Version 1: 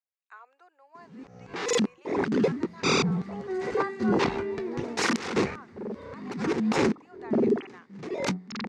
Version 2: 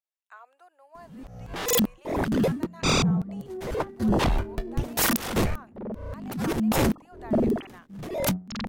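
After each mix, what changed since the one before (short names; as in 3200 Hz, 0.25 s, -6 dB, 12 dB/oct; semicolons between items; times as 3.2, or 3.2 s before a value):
first sound: add high shelf 8900 Hz +3.5 dB; second sound: add band-pass 290 Hz, Q 1.8; master: remove speaker cabinet 190–6600 Hz, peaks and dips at 410 Hz +6 dB, 630 Hz -9 dB, 2200 Hz +3 dB, 3200 Hz -5 dB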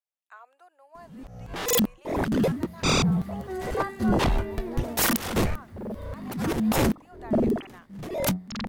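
second sound: remove band-pass 290 Hz, Q 1.8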